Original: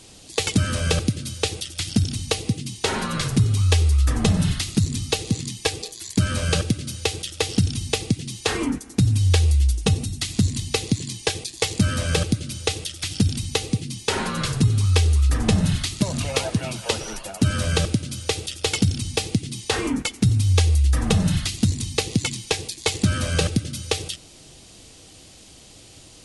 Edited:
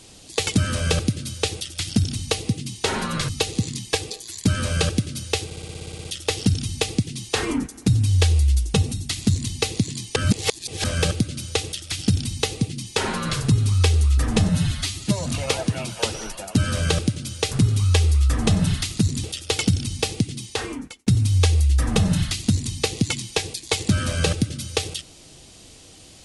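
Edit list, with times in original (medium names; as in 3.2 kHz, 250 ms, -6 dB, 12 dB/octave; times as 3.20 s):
3.29–5.01 s: move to 18.38 s
7.17 s: stutter 0.06 s, 11 plays
11.28–11.96 s: reverse
15.61–16.12 s: stretch 1.5×
19.44–20.21 s: fade out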